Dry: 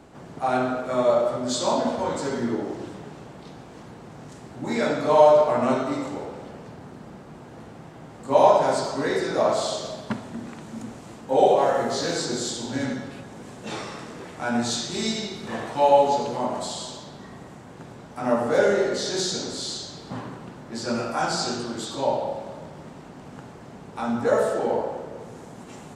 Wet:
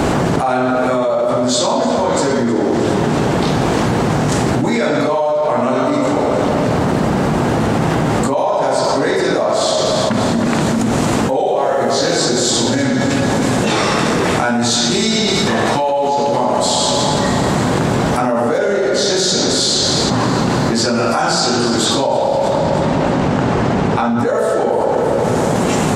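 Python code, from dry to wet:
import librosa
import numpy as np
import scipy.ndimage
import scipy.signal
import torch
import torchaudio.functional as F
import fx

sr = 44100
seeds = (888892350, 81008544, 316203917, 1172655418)

y = fx.air_absorb(x, sr, metres=80.0, at=(22.52, 24.19))
y = fx.echo_feedback(y, sr, ms=316, feedback_pct=46, wet_db=-14.5)
y = fx.env_flatten(y, sr, amount_pct=100)
y = F.gain(torch.from_numpy(y), -4.0).numpy()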